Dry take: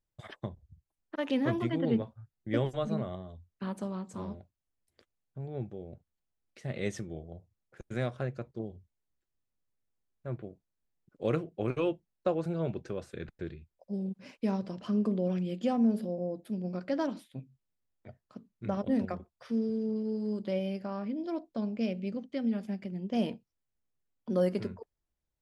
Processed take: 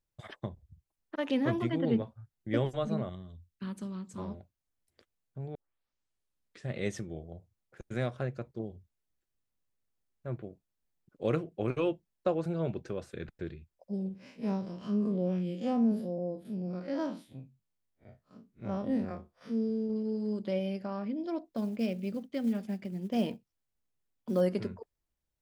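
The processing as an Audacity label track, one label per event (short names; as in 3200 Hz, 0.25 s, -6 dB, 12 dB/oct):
3.090000	4.180000	bell 690 Hz -13.5 dB 1.4 oct
5.550000	5.550000	tape start 1.17 s
14.080000	19.900000	time blur width 80 ms
21.480000	24.410000	short-mantissa float mantissa of 4-bit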